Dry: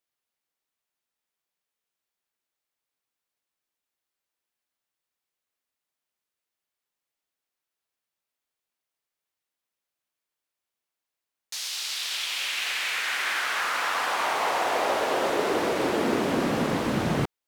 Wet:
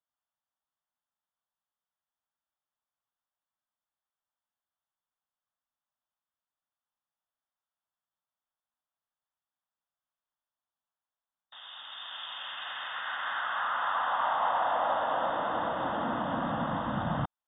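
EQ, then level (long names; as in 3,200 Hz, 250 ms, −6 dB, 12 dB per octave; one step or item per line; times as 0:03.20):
linear-phase brick-wall low-pass 3,700 Hz
low-shelf EQ 250 Hz −4.5 dB
phaser with its sweep stopped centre 970 Hz, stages 4
0.0 dB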